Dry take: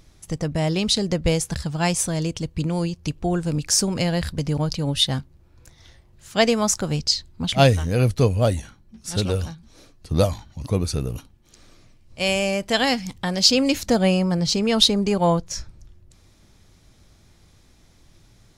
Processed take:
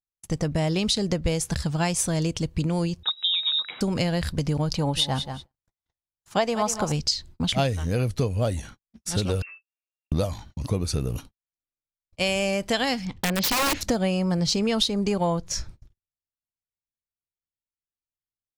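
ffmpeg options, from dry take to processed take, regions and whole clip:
-filter_complex "[0:a]asettb=1/sr,asplit=3[a][b][c];[a]atrim=end=3.034[d];[b]atrim=start=3.03:end=3.81,asetpts=PTS-STARTPTS,afade=t=in:d=0.004:c=qsin,afade=t=out:st=0.776:d=0.004:c=qsin,lowpass=f=3.3k:t=q:w=0.5098,lowpass=f=3.3k:t=q:w=0.6013,lowpass=f=3.3k:t=q:w=0.9,lowpass=f=3.3k:t=q:w=2.563,afreqshift=-3900,highpass=170[e];[c]atrim=start=3.806[f];[d][e]acrossfade=d=0.004:c1=hsin:c2=qsin[g];[g][f]acrossfade=d=0.004:c1=qsin:c2=hsin,asettb=1/sr,asplit=3[h][i][j];[h]atrim=end=4.754[k];[i]atrim=start=4.75:end=6.92,asetpts=PTS-STARTPTS,afade=t=in:d=0.004:c=qsin,afade=t=out:st=2.166:d=0.004:c=qsin,equalizer=f=870:t=o:w=1:g=10.5,aecho=1:1:185|370:0.224|0.0403,atrim=end_sample=95697[l];[j]atrim=start=6.916[m];[k][l]acrossfade=d=0.004:c1=hsin:c2=qsin[n];[n][m]acrossfade=d=0.004:c1=qsin:c2=hsin,asettb=1/sr,asplit=3[o][p][q];[o]atrim=end=9.424[r];[p]atrim=start=9.42:end=10.12,asetpts=PTS-STARTPTS,afade=t=in:d=0.004:c=qsin,afade=t=out:st=0.696:d=0.004:c=qsin,acompressor=threshold=-44dB:ratio=3:attack=3.2:release=140:knee=1:detection=peak,lowpass=f=2.4k:t=q:w=0.5098,lowpass=f=2.4k:t=q:w=0.6013,lowpass=f=2.4k:t=q:w=0.9,lowpass=f=2.4k:t=q:w=2.563,afreqshift=-2800[s];[q]atrim=start=10.116[t];[r][s]acrossfade=d=0.004:c1=hsin:c2=qsin[u];[u][t]acrossfade=d=0.004:c1=qsin:c2=hsin,asettb=1/sr,asplit=3[v][w][x];[v]atrim=end=13.054[y];[w]atrim=start=13.05:end=13.81,asetpts=PTS-STARTPTS,afade=t=in:d=0.004:c=qsin,afade=t=out:st=0.756:d=0.004:c=qsin,lowpass=3.4k,aeval=exprs='(mod(7.08*val(0)+1,2)-1)/7.08':c=same[z];[x]atrim=start=13.806[aa];[y][z]acrossfade=d=0.004:c1=hsin:c2=qsin[ab];[ab][aa]acrossfade=d=0.004:c1=qsin:c2=hsin,agate=range=-54dB:threshold=-41dB:ratio=16:detection=peak,acompressor=threshold=-22dB:ratio=6,volume=1.5dB"

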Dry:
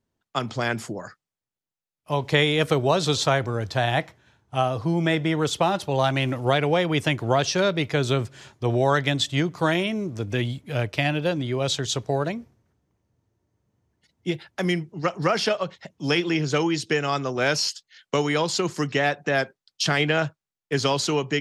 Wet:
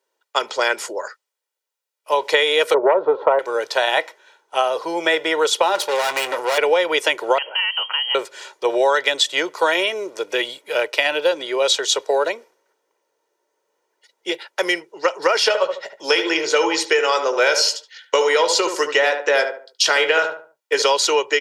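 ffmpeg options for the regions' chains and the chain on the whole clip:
-filter_complex "[0:a]asettb=1/sr,asplit=3[a][b][c];[a]atrim=end=2.744[d];[b]atrim=start=2.74:end=3.39,asetpts=PTS-STARTPTS,afade=t=in:d=0.004:c=qsin,afade=t=out:st=0.646:d=0.004:c=qsin,lowpass=f=1.1k:w=0.5412,lowpass=f=1.1k:w=1.3066,aeval=exprs='0.447*sin(PI/2*1.58*val(0)/0.447)':c=same[e];[c]atrim=start=3.386[f];[d][e]acrossfade=d=0.004:c1=hsin:c2=qsin[g];[g][f]acrossfade=d=0.004:c1=qsin:c2=hsin,asettb=1/sr,asplit=3[h][i][j];[h]atrim=end=5.754[k];[i]atrim=start=5.75:end=6.58,asetpts=PTS-STARTPTS,afade=t=in:d=0.004:c=qsin,afade=t=out:st=0.826:d=0.004:c=qsin,aeval=exprs='(tanh(39.8*val(0)+0.5)-tanh(0.5))/39.8':c=same,acontrast=89,asplit=2[l][m];[m]adelay=22,volume=-13.5dB[n];[l][n]amix=inputs=2:normalize=0,atrim=end_sample=36603[o];[j]atrim=start=6.576[p];[k][o]acrossfade=d=0.004:c1=hsin:c2=qsin[q];[q][p]acrossfade=d=0.004:c1=qsin:c2=hsin,asettb=1/sr,asplit=3[r][s][t];[r]atrim=end=7.384[u];[s]atrim=start=7.38:end=8.15,asetpts=PTS-STARTPTS,afade=t=in:d=0.004:c=qsin,afade=t=out:st=0.766:d=0.004:c=qsin,acompressor=threshold=-29dB:ratio=3:attack=3.2:release=140:knee=1:detection=peak,lowpass=f=2.8k:t=q:w=0.5098,lowpass=f=2.8k:t=q:w=0.6013,lowpass=f=2.8k:t=q:w=0.9,lowpass=f=2.8k:t=q:w=2.563,afreqshift=-3300[v];[t]atrim=start=8.146[w];[u][v]acrossfade=d=0.004:c1=hsin:c2=qsin[x];[x][w]acrossfade=d=0.004:c1=qsin:c2=hsin,asettb=1/sr,asplit=3[y][z][aa];[y]atrim=end=15.434[ab];[z]atrim=start=15.43:end=20.82,asetpts=PTS-STARTPTS,afade=t=in:d=0.004:c=qsin,afade=t=out:st=5.386:d=0.004:c=qsin,asplit=2[ac][ad];[ad]adelay=18,volume=-11dB[ae];[ac][ae]amix=inputs=2:normalize=0,atrim=end_sample=237699,asplit=2[af][ag];[ag]adelay=73,lowpass=f=1.4k:p=1,volume=-7dB,asplit=2[ah][ai];[ai]adelay=73,lowpass=f=1.4k:p=1,volume=0.35,asplit=2[aj][ak];[ak]adelay=73,lowpass=f=1.4k:p=1,volume=0.35,asplit=2[al][am];[am]adelay=73,lowpass=f=1.4k:p=1,volume=0.35[an];[af][ah][aj][al][an]amix=inputs=5:normalize=0,atrim=end_sample=237699[ao];[aa]atrim=start=20.816[ap];[ab][ao]acrossfade=d=0.004:c1=hsin:c2=qsin[aq];[aq][ap]acrossfade=d=0.004:c1=qsin:c2=hsin,highpass=f=440:w=0.5412,highpass=f=440:w=1.3066,aecho=1:1:2.1:0.49,acompressor=threshold=-21dB:ratio=6,volume=8.5dB"

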